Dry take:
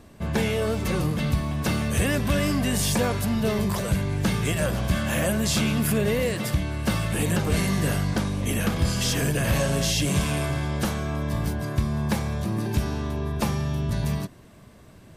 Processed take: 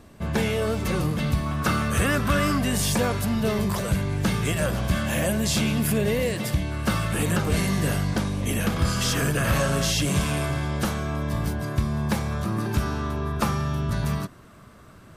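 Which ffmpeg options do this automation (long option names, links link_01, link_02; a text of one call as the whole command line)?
ffmpeg -i in.wav -af "asetnsamples=nb_out_samples=441:pad=0,asendcmd='1.46 equalizer g 14;2.58 equalizer g 2.5;5.06 equalizer g -3.5;6.72 equalizer g 7;7.46 equalizer g 0.5;8.76 equalizer g 10.5;10.02 equalizer g 3.5;12.31 equalizer g 12',equalizer=frequency=1300:width_type=o:width=0.43:gain=2.5" out.wav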